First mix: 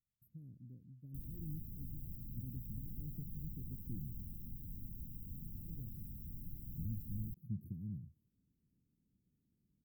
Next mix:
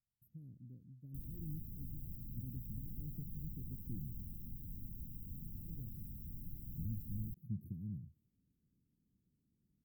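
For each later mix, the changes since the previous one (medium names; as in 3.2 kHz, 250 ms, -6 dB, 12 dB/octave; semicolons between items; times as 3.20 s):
no change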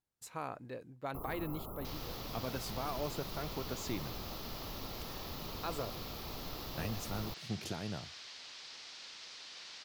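first sound: add brick-wall FIR band-stop 1.4–11 kHz; master: remove inverse Chebyshev band-stop 820–6000 Hz, stop band 70 dB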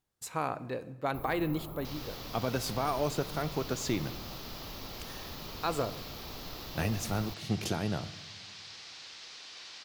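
speech +7.5 dB; reverb: on, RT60 1.1 s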